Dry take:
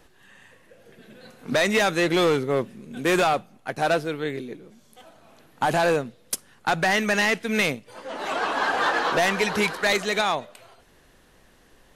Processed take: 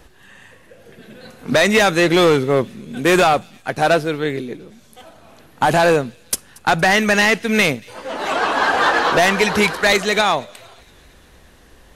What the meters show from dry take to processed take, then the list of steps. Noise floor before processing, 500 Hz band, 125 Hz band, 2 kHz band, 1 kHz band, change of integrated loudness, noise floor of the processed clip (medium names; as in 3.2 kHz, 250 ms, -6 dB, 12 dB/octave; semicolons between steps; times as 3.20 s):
-57 dBFS, +7.0 dB, +8.0 dB, +7.0 dB, +7.0 dB, +7.0 dB, -49 dBFS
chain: peaking EQ 61 Hz +9 dB 1 oct; feedback echo behind a high-pass 231 ms, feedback 62%, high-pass 2.8 kHz, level -24 dB; trim +7 dB